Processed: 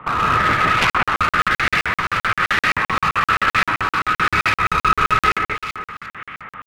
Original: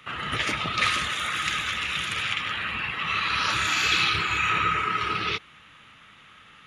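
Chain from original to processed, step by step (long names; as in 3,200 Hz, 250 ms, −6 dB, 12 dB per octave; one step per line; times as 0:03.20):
low-pass filter 3,400 Hz 12 dB per octave
in parallel at −2 dB: downward compressor, threshold −34 dBFS, peak gain reduction 14 dB
on the sum: brickwall limiter −17.5 dBFS, peak gain reduction 8.5 dB
speech leveller
auto-filter low-pass saw up 1.1 Hz 970–2,300 Hz
asymmetric clip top −27 dBFS
on a send: delay that swaps between a low-pass and a high-pass 177 ms, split 2,200 Hz, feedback 53%, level −2 dB
on the sum: regular buffer underruns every 0.13 s, samples 2,048, zero, from 0:00.90
0:00.78–0:01.20: highs frequency-modulated by the lows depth 0.59 ms
level +7.5 dB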